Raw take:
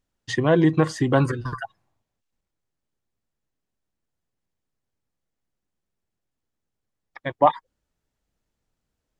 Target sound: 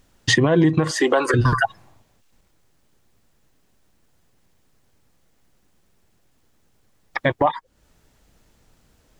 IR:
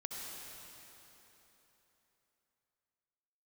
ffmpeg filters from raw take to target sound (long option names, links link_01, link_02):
-filter_complex "[0:a]asettb=1/sr,asplit=3[link_01][link_02][link_03];[link_01]atrim=end=0.914[link_04];[link_02]atrim=start=0.91:end=1.34,asetpts=PTS-STARTPTS,afade=type=in:duration=0.004:curve=qsin,afade=type=out:start_time=0.426:duration=0.004:curve=qsin,highpass=frequency=390:width=0.5412,highpass=frequency=390:width=1.3066[link_05];[link_03]atrim=start=1.336[link_06];[link_04][link_05]acrossfade=duration=0.004:curve1=hsin:curve2=qsin[link_07];[link_07][link_06]acrossfade=duration=0.004:curve1=qsin:curve2=hsin,acompressor=threshold=-33dB:ratio=4,alimiter=level_in=27dB:limit=-1dB:release=50:level=0:latency=1,volume=-6.5dB"